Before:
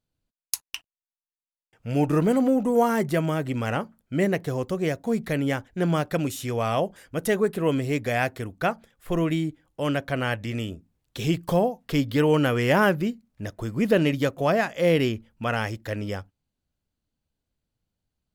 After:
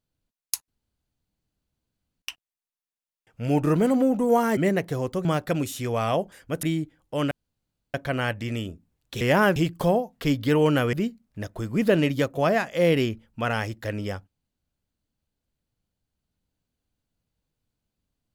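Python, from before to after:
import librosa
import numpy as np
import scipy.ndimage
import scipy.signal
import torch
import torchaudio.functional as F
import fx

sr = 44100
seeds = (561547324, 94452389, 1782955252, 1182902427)

y = fx.edit(x, sr, fx.insert_room_tone(at_s=0.68, length_s=1.54),
    fx.cut(start_s=3.03, length_s=1.1),
    fx.cut(start_s=4.81, length_s=1.08),
    fx.cut(start_s=7.27, length_s=2.02),
    fx.insert_room_tone(at_s=9.97, length_s=0.63),
    fx.move(start_s=12.61, length_s=0.35, to_s=11.24), tone=tone)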